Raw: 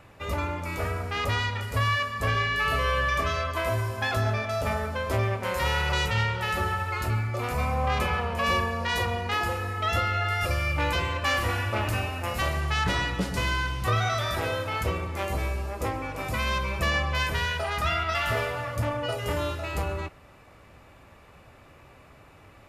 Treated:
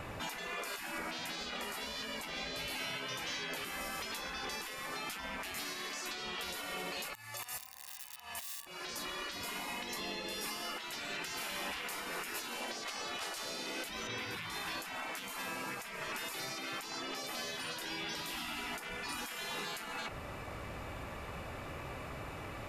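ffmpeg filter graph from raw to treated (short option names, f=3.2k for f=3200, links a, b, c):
-filter_complex "[0:a]asettb=1/sr,asplit=3[a][b][c];[a]atrim=end=0.984[d];[b]atrim=start=0.98:end=3.81,asetpts=PTS-STARTPTS,afade=t=in:d=0.004:c=qsin,afade=t=out:st=2.826:d=0.004:c=qsin,bandreject=f=50:t=h:w=6,bandreject=f=100:t=h:w=6,bandreject=f=150:t=h:w=6,bandreject=f=200:t=h:w=6,bandreject=f=250:t=h:w=6,bandreject=f=300:t=h:w=6,bandreject=f=350:t=h:w=6,bandreject=f=400:t=h:w=6,flanger=delay=6.3:depth=8.6:regen=34:speed=1.7:shape=triangular[e];[c]atrim=start=3.806[f];[d][e]acrossfade=d=0.004:c1=hsin:c2=qsin[g];[g][f]acrossfade=d=0.004:c1=qsin:c2=hsin,asettb=1/sr,asplit=3[h][i][j];[h]atrim=end=7.134[k];[i]atrim=start=7.13:end=8.67,asetpts=PTS-STARTPTS,afade=t=in:d=0.004:c=qsin,afade=t=out:st=1.536:d=0.004:c=qsin,aeval=exprs='(mod(8.41*val(0)+1,2)-1)/8.41':c=same,aderivative,aecho=1:1:1.1:0.64,atrim=end_sample=67914[l];[j]atrim=start=8.666[m];[k][l]acrossfade=d=0.004:c1=hsin:c2=qsin[n];[n][m]acrossfade=d=0.004:c1=qsin:c2=hsin,asettb=1/sr,asplit=3[o][p][q];[o]atrim=end=14.074[r];[p]atrim=start=14.07:end=14.5,asetpts=PTS-STARTPTS,afade=t=in:d=0.004:c=qsin,afade=t=out:st=0.426:d=0.004:c=qsin,highpass=f=150:w=0.5412,highpass=f=150:w=1.3066,bass=f=250:g=-5,treble=f=4k:g=-13[s];[q]atrim=start=14.496[t];[r][s]acrossfade=d=0.004:c1=hsin:c2=qsin[u];[u][t]acrossfade=d=0.004:c1=qsin:c2=hsin,acompressor=threshold=-31dB:ratio=5,afftfilt=real='re*lt(hypot(re,im),0.0251)':imag='im*lt(hypot(re,im),0.0251)':win_size=1024:overlap=0.75,alimiter=level_in=14dB:limit=-24dB:level=0:latency=1:release=215,volume=-14dB,volume=8.5dB"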